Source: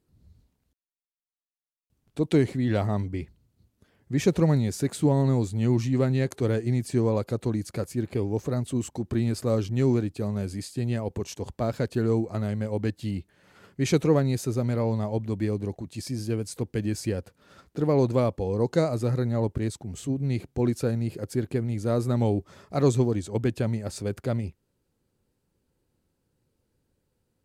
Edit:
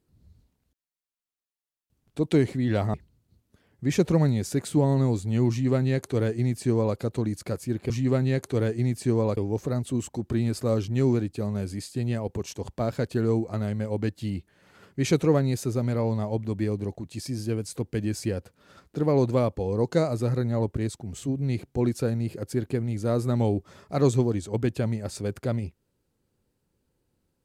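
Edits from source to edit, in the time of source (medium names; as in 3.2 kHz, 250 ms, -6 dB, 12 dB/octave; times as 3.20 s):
2.94–3.22 s: delete
5.78–7.25 s: copy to 8.18 s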